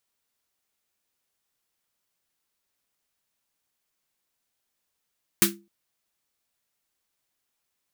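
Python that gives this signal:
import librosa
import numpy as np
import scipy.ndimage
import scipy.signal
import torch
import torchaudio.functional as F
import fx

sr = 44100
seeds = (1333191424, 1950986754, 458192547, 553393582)

y = fx.drum_snare(sr, seeds[0], length_s=0.26, hz=200.0, second_hz=340.0, noise_db=7.5, noise_from_hz=1200.0, decay_s=0.32, noise_decay_s=0.17)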